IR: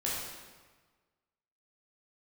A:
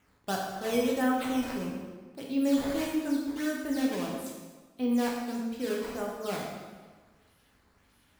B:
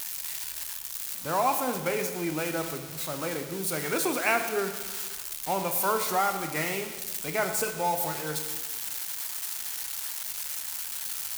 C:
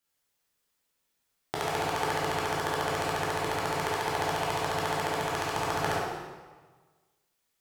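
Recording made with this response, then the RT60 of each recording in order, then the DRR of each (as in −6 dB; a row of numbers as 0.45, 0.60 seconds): C; 1.4, 1.4, 1.4 seconds; −2.0, 6.0, −6.5 decibels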